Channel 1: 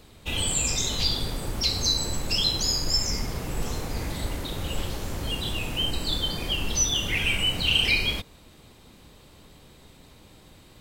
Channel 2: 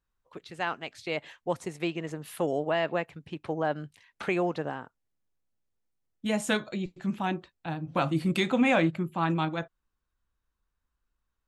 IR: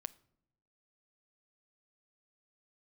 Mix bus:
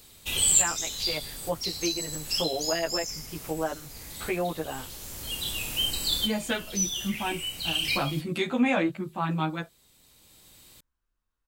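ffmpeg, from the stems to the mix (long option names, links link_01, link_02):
-filter_complex "[0:a]crystalizer=i=5.5:c=0,volume=-8.5dB[link_01];[1:a]asplit=2[link_02][link_03];[link_03]adelay=11.7,afreqshift=1[link_04];[link_02][link_04]amix=inputs=2:normalize=1,volume=1.5dB,asplit=2[link_05][link_06];[link_06]apad=whole_len=476520[link_07];[link_01][link_07]sidechaincompress=threshold=-35dB:ratio=8:attack=16:release=1290[link_08];[link_08][link_05]amix=inputs=2:normalize=0"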